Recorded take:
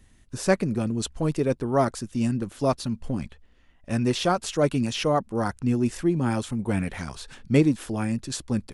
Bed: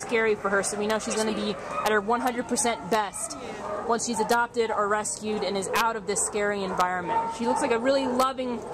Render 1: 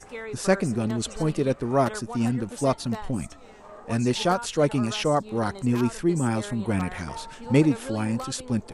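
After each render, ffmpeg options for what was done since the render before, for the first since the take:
-filter_complex "[1:a]volume=0.224[s0];[0:a][s0]amix=inputs=2:normalize=0"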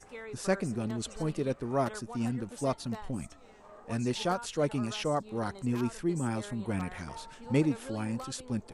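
-af "volume=0.422"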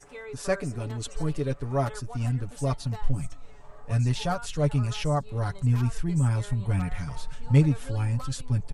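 -af "aecho=1:1:7:0.71,asubboost=boost=10:cutoff=98"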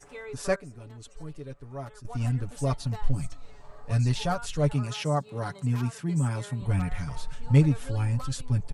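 -filter_complex "[0:a]asettb=1/sr,asplit=3[s0][s1][s2];[s0]atrim=end=3.064[s3];[s1]atrim=start=3.06:end=4.14,asetpts=PTS-STARTPTS,afade=t=in:d=0.004:c=qsin,afade=t=out:st=1.076:d=0.004:c=qsin,equalizer=f=4400:t=o:w=0.37:g=7.5[s4];[s2]atrim=start=4.136[s5];[s3][s4]acrossfade=d=0.004:c1=hsin:c2=qsin[s6];[s6][s5]acrossfade=d=0.004:c1=qsin:c2=hsin,asettb=1/sr,asplit=3[s7][s8][s9];[s7]atrim=end=4.734[s10];[s8]atrim=start=4.73:end=6.62,asetpts=PTS-STARTPTS,afade=t=in:d=0.004:c=qsin,afade=t=out:st=1.886:d=0.004:c=qsin,highpass=f=130:w=0.5412,highpass=f=130:w=1.3066[s11];[s9]atrim=start=6.616[s12];[s10][s11]acrossfade=d=0.004:c1=hsin:c2=qsin[s13];[s13][s12]acrossfade=d=0.004:c1=qsin:c2=hsin,asplit=3[s14][s15][s16];[s14]atrim=end=0.562[s17];[s15]atrim=start=0.558:end=2.052,asetpts=PTS-STARTPTS,volume=0.251[s18];[s16]atrim=start=2.048[s19];[s17][s18]acrossfade=d=0.004:c1=hsin:c2=hsin[s20];[s20][s19]acrossfade=d=0.004:c1=hsin:c2=hsin"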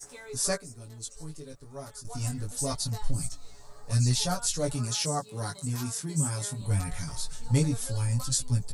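-af "flanger=delay=16.5:depth=3.2:speed=0.24,aexciter=amount=5.1:drive=5.7:freq=4000"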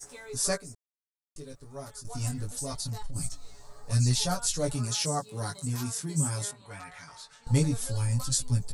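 -filter_complex "[0:a]asplit=3[s0][s1][s2];[s0]afade=t=out:st=2.45:d=0.02[s3];[s1]acompressor=threshold=0.0316:ratio=6:attack=3.2:release=140:knee=1:detection=peak,afade=t=in:st=2.45:d=0.02,afade=t=out:st=3.15:d=0.02[s4];[s2]afade=t=in:st=3.15:d=0.02[s5];[s3][s4][s5]amix=inputs=3:normalize=0,asettb=1/sr,asplit=3[s6][s7][s8];[s6]atrim=end=6.514[s9];[s7]atrim=start=6.51:end=7.47,asetpts=PTS-STARTPTS,afade=t=in:d=0.004:c=qsin,afade=t=out:st=0.956:d=0.004:c=qsin,bandpass=f=1500:t=q:w=0.82[s10];[s8]atrim=start=7.466[s11];[s9][s10]acrossfade=d=0.004:c1=hsin:c2=qsin[s12];[s12][s11]acrossfade=d=0.004:c1=qsin:c2=hsin,asplit=3[s13][s14][s15];[s13]atrim=end=0.75,asetpts=PTS-STARTPTS,afade=t=out:st=0.746:d=0.004:c=hsin[s16];[s14]atrim=start=0.75:end=1.36,asetpts=PTS-STARTPTS,volume=0[s17];[s15]atrim=start=1.36,asetpts=PTS-STARTPTS,afade=t=in:d=0.004:c=hsin[s18];[s16][s17][s18]concat=n=3:v=0:a=1"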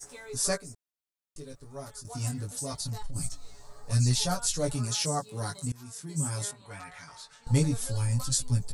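-filter_complex "[0:a]asettb=1/sr,asplit=3[s0][s1][s2];[s0]atrim=end=2.054[s3];[s1]atrim=start=2.05:end=2.81,asetpts=PTS-STARTPTS,afade=t=in:d=0.004:c=qsin,afade=t=out:st=0.756:d=0.004:c=qsin,highpass=56[s4];[s2]atrim=start=2.806[s5];[s3][s4]acrossfade=d=0.004:c1=hsin:c2=qsin[s6];[s6][s5]acrossfade=d=0.004:c1=qsin:c2=hsin,asplit=2[s7][s8];[s7]atrim=end=5.72,asetpts=PTS-STARTPTS,afade=t=out:st=5.716:d=0.004:c=hsin:silence=0.0668344[s9];[s8]atrim=start=5.72,asetpts=PTS-STARTPTS,afade=t=in:d=0.7:silence=0.0668344[s10];[s9][s10]concat=n=2:v=0:a=1"

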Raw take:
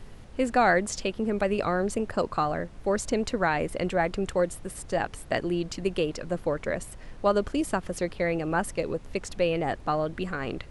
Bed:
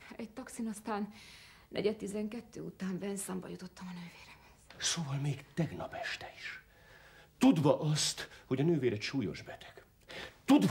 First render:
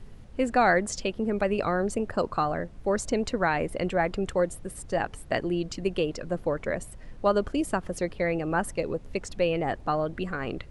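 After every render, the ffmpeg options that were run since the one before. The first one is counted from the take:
-af "afftdn=nr=6:nf=-45"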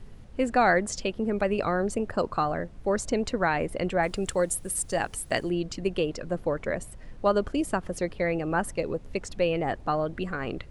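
-filter_complex "[0:a]asettb=1/sr,asplit=3[s0][s1][s2];[s0]atrim=end=4.034[s3];[s1]atrim=start=4.03:end=5.5,asetpts=PTS-STARTPTS,afade=t=in:d=0.004:c=qsin,afade=t=out:st=1.466:d=0.004:c=qsin,aemphasis=mode=production:type=75fm[s4];[s2]atrim=start=5.496[s5];[s3][s4]acrossfade=d=0.004:c1=hsin:c2=qsin[s6];[s6][s5]acrossfade=d=0.004:c1=qsin:c2=hsin"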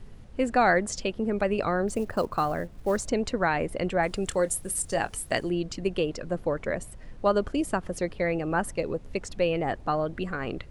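-filter_complex "[0:a]asettb=1/sr,asplit=3[s0][s1][s2];[s0]atrim=end=1.884[s3];[s1]atrim=start=1.88:end=3.07,asetpts=PTS-STARTPTS,afade=t=in:d=0.004:c=qsin,afade=t=out:st=1.186:d=0.004:c=qsin,acrusher=bits=7:mode=log:mix=0:aa=0.000001[s4];[s2]atrim=start=3.066[s5];[s3][s4]acrossfade=d=0.004:c1=hsin:c2=qsin[s6];[s6][s5]acrossfade=d=0.004:c1=qsin:c2=hsin,asettb=1/sr,asplit=3[s7][s8][s9];[s7]atrim=end=4.264[s10];[s8]atrim=start=4.26:end=5.31,asetpts=PTS-STARTPTS,afade=t=in:d=0.004:c=qsin,afade=t=out:st=1.046:d=0.004:c=qsin,asplit=2[s11][s12];[s12]adelay=25,volume=0.2[s13];[s11][s13]amix=inputs=2:normalize=0,atrim=end_sample=46305[s14];[s9]atrim=start=5.306[s15];[s10][s14]acrossfade=d=0.004:c1=hsin:c2=qsin[s16];[s16][s15]acrossfade=d=0.004:c1=qsin:c2=hsin"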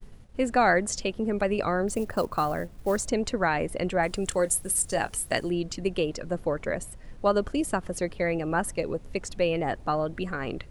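-af "highshelf=f=8000:g=7,agate=range=0.0224:threshold=0.01:ratio=3:detection=peak"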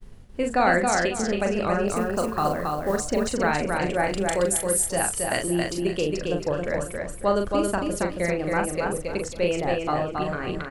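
-filter_complex "[0:a]asplit=2[s0][s1];[s1]adelay=40,volume=0.562[s2];[s0][s2]amix=inputs=2:normalize=0,aecho=1:1:273|546|819|1092:0.668|0.187|0.0524|0.0147"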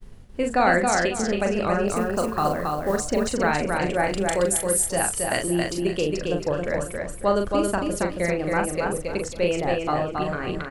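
-af "volume=1.12"

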